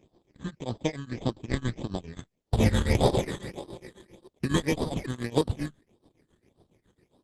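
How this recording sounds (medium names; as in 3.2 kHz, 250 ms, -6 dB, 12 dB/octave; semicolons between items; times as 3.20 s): tremolo triangle 7.3 Hz, depth 95%; aliases and images of a low sample rate 1.4 kHz, jitter 0%; phasing stages 8, 1.7 Hz, lowest notch 690–2200 Hz; Opus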